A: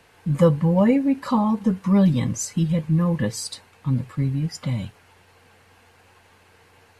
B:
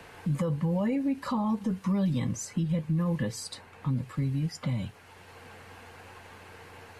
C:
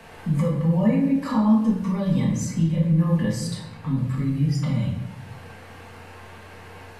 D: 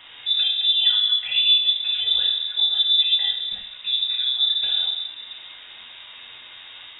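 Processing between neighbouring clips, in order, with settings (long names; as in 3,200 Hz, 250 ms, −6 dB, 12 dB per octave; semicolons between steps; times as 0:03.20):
in parallel at −2.5 dB: downward compressor, threshold −29 dBFS, peak gain reduction 17 dB; on the sum: brickwall limiter −13 dBFS, peak gain reduction 8.5 dB; multiband upward and downward compressor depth 40%; level −8 dB
rectangular room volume 290 cubic metres, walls mixed, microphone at 1.6 metres
voice inversion scrambler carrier 3,700 Hz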